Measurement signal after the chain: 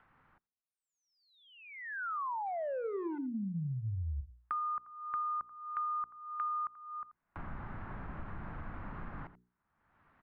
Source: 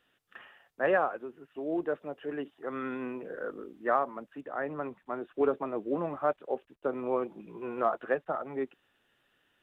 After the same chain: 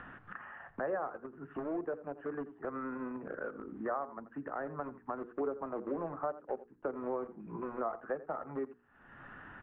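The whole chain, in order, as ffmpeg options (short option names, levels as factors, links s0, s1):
-filter_complex "[0:a]acrossover=split=310|730[s0][s1][s2];[s1]aeval=exprs='val(0)*gte(abs(val(0)),0.0133)':c=same[s3];[s0][s3][s2]amix=inputs=3:normalize=0,acompressor=mode=upward:threshold=0.0112:ratio=2.5,bandreject=f=60:t=h:w=6,bandreject=f=120:t=h:w=6,bandreject=f=180:t=h:w=6,bandreject=f=240:t=h:w=6,bandreject=f=300:t=h:w=6,bandreject=f=360:t=h:w=6,bandreject=f=420:t=h:w=6,bandreject=f=480:t=h:w=6,asplit=2[s4][s5];[s5]aecho=0:1:84:0.126[s6];[s4][s6]amix=inputs=2:normalize=0,acompressor=threshold=0.00316:ratio=3,lowpass=f=1500:w=0.5412,lowpass=f=1500:w=1.3066,volume=3.35"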